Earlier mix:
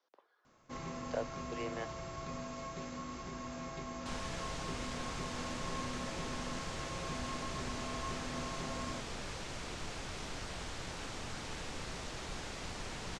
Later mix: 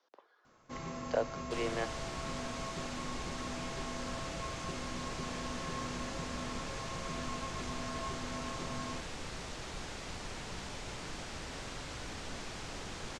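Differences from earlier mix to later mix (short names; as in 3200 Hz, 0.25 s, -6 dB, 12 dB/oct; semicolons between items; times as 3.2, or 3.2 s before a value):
speech +5.0 dB; second sound: entry -2.55 s; reverb: on, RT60 1.2 s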